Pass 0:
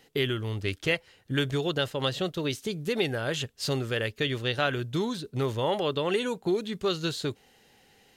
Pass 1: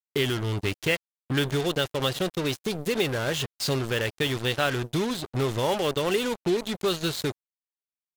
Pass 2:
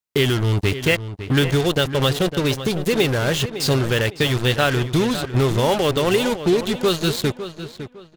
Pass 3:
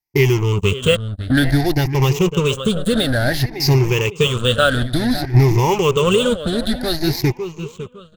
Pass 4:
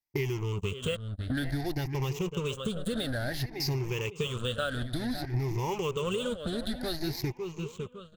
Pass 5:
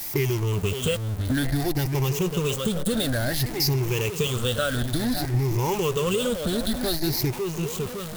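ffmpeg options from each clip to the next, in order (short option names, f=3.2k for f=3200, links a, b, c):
-filter_complex "[0:a]asplit=2[a][b];[b]acompressor=threshold=-36dB:ratio=6,volume=-1.5dB[c];[a][c]amix=inputs=2:normalize=0,acrusher=bits=4:mix=0:aa=0.5"
-filter_complex "[0:a]lowshelf=f=150:g=6,asplit=2[a][b];[b]adelay=556,lowpass=f=3.6k:p=1,volume=-11.5dB,asplit=2[c][d];[d]adelay=556,lowpass=f=3.6k:p=1,volume=0.29,asplit=2[e][f];[f]adelay=556,lowpass=f=3.6k:p=1,volume=0.29[g];[c][e][g]amix=inputs=3:normalize=0[h];[a][h]amix=inputs=2:normalize=0,volume=6dB"
-af "afftfilt=real='re*pow(10,17/40*sin(2*PI*(0.75*log(max(b,1)*sr/1024/100)/log(2)-(0.56)*(pts-256)/sr)))':imag='im*pow(10,17/40*sin(2*PI*(0.75*log(max(b,1)*sr/1024/100)/log(2)-(0.56)*(pts-256)/sr)))':win_size=1024:overlap=0.75,lowshelf=f=89:g=11,volume=-2dB"
-af "acompressor=threshold=-25dB:ratio=3,volume=-6.5dB"
-af "aeval=exprs='val(0)+0.5*0.0168*sgn(val(0))':c=same,tiltshelf=f=1.4k:g=8,crystalizer=i=8.5:c=0,volume=-2.5dB"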